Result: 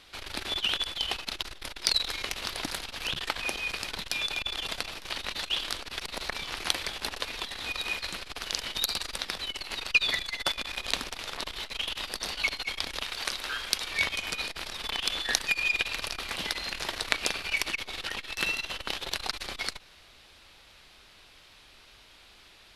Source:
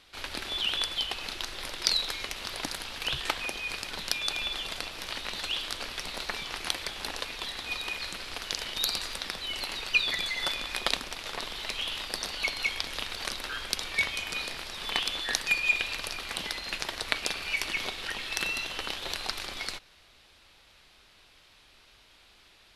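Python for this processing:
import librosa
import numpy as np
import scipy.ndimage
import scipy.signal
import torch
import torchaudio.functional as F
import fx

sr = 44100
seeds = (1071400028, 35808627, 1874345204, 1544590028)

y = fx.low_shelf(x, sr, hz=410.0, db=-6.5, at=(13.02, 13.91))
y = fx.transformer_sat(y, sr, knee_hz=2700.0)
y = F.gain(torch.from_numpy(y), 3.5).numpy()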